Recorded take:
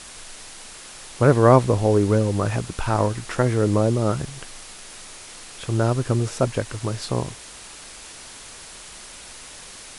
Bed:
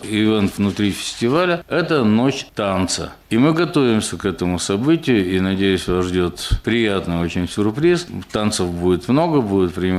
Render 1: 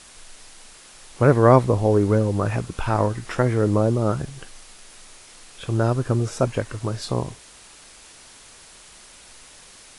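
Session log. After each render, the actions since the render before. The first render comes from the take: noise print and reduce 6 dB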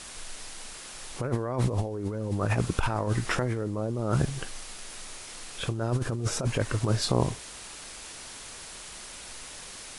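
peak limiter -13 dBFS, peak gain reduction 11 dB; compressor with a negative ratio -26 dBFS, ratio -0.5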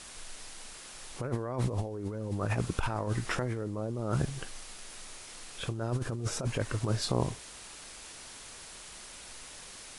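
trim -4.5 dB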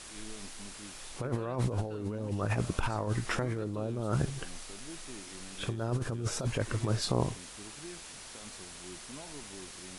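add bed -32.5 dB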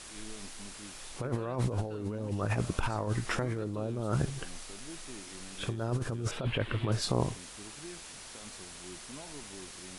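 6.31–6.92 s: resonant high shelf 4.4 kHz -12 dB, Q 3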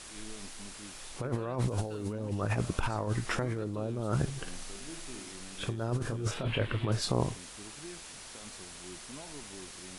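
1.68–2.13 s: treble shelf 3.9 kHz +10 dB; 4.41–5.32 s: flutter echo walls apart 9.6 m, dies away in 0.48 s; 5.98–6.67 s: doubling 28 ms -6.5 dB

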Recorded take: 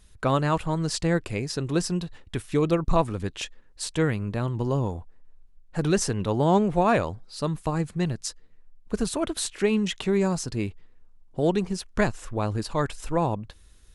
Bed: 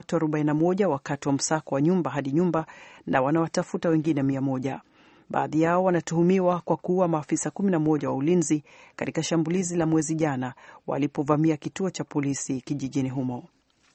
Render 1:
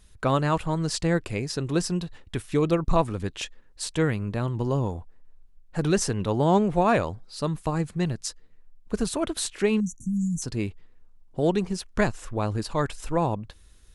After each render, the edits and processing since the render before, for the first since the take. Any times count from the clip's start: 9.80–10.42 s: brick-wall FIR band-stop 310–5700 Hz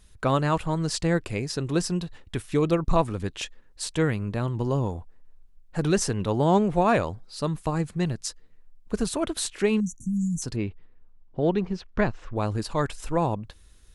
10.56–12.36 s: distance through air 200 m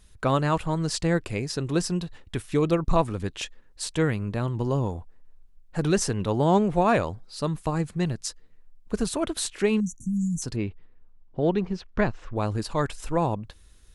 no audible change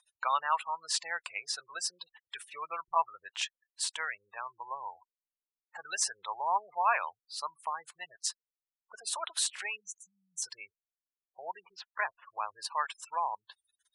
spectral gate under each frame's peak -25 dB strong; elliptic band-pass 920–9900 Hz, stop band 50 dB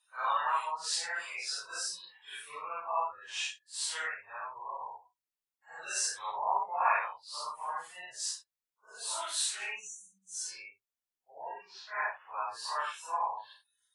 phase randomisation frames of 200 ms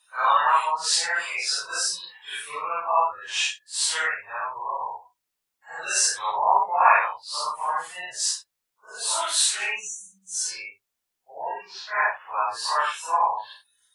trim +11 dB

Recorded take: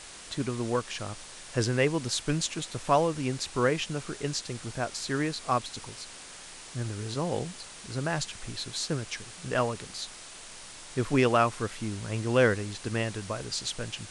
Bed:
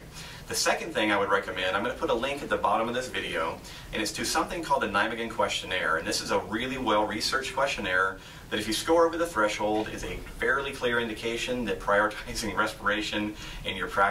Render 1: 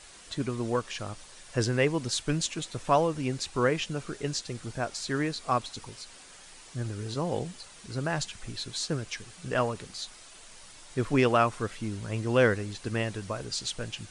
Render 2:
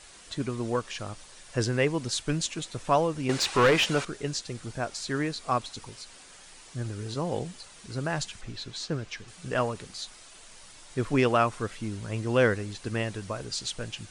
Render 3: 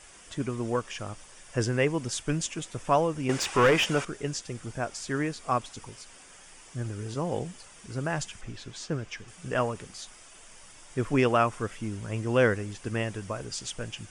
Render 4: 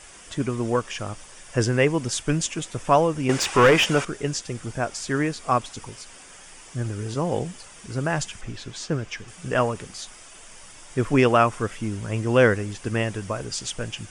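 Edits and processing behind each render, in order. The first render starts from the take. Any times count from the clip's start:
noise reduction 7 dB, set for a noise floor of -46 dBFS
3.29–4.05 s: overdrive pedal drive 23 dB, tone 3.4 kHz, clips at -12.5 dBFS; 8.41–9.28 s: distance through air 77 m
peaking EQ 4.1 kHz -14 dB 0.23 oct
trim +5.5 dB

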